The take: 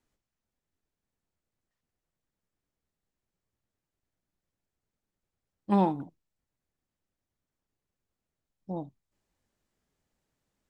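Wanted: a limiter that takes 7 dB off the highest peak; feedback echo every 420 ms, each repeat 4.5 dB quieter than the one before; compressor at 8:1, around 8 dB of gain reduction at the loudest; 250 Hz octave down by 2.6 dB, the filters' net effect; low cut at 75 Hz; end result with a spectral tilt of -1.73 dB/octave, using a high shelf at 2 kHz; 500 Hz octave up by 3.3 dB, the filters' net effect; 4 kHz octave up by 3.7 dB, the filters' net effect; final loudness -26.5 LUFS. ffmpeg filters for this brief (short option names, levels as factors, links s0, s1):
-af "highpass=75,equalizer=f=250:t=o:g=-5.5,equalizer=f=500:t=o:g=6.5,highshelf=f=2000:g=-4,equalizer=f=4000:t=o:g=8,acompressor=threshold=0.0501:ratio=8,alimiter=limit=0.0668:level=0:latency=1,aecho=1:1:420|840|1260|1680|2100|2520|2940|3360|3780:0.596|0.357|0.214|0.129|0.0772|0.0463|0.0278|0.0167|0.01,volume=5.96"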